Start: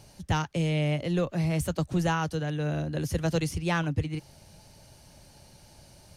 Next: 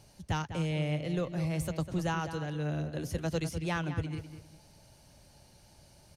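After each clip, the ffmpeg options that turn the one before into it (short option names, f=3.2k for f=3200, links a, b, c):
-filter_complex "[0:a]asplit=2[a][b];[b]adelay=200,lowpass=f=3.7k:p=1,volume=-10dB,asplit=2[c][d];[d]adelay=200,lowpass=f=3.7k:p=1,volume=0.27,asplit=2[e][f];[f]adelay=200,lowpass=f=3.7k:p=1,volume=0.27[g];[a][c][e][g]amix=inputs=4:normalize=0,volume=-5.5dB"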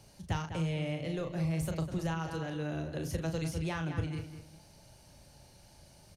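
-filter_complex "[0:a]asplit=2[a][b];[b]adelay=37,volume=-6.5dB[c];[a][c]amix=inputs=2:normalize=0,acrossover=split=140[d][e];[e]acompressor=threshold=-33dB:ratio=6[f];[d][f]amix=inputs=2:normalize=0"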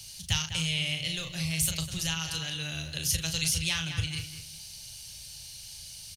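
-af "firequalizer=gain_entry='entry(100,0);entry(290,-16);entry(3000,15)':delay=0.05:min_phase=1,volume=4dB"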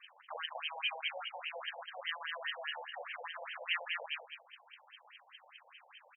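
-af "aeval=exprs='(tanh(44.7*val(0)+0.6)-tanh(0.6))/44.7':c=same,highpass=f=200:t=q:w=0.5412,highpass=f=200:t=q:w=1.307,lowpass=f=3k:t=q:w=0.5176,lowpass=f=3k:t=q:w=0.7071,lowpass=f=3k:t=q:w=1.932,afreqshift=200,afftfilt=real='re*between(b*sr/1024,650*pow(2300/650,0.5+0.5*sin(2*PI*4.9*pts/sr))/1.41,650*pow(2300/650,0.5+0.5*sin(2*PI*4.9*pts/sr))*1.41)':imag='im*between(b*sr/1024,650*pow(2300/650,0.5+0.5*sin(2*PI*4.9*pts/sr))/1.41,650*pow(2300/650,0.5+0.5*sin(2*PI*4.9*pts/sr))*1.41)':win_size=1024:overlap=0.75,volume=10dB"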